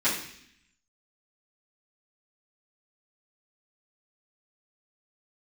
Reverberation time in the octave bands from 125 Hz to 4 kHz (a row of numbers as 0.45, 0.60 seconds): 0.95, 0.95, 0.70, 0.65, 0.90, 0.85 seconds